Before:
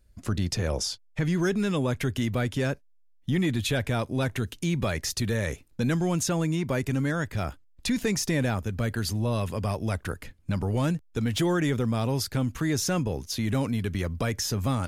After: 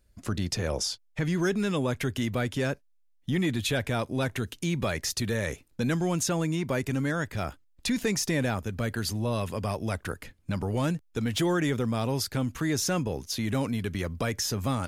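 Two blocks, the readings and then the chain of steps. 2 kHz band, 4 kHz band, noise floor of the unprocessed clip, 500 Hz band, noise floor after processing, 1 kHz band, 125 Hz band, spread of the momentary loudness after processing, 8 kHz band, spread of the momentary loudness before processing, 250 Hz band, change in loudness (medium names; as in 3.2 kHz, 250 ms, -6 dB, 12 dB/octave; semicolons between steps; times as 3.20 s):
0.0 dB, 0.0 dB, -57 dBFS, -0.5 dB, -63 dBFS, 0.0 dB, -3.0 dB, 6 LU, 0.0 dB, 5 LU, -1.5 dB, -1.5 dB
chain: bass shelf 140 Hz -5.5 dB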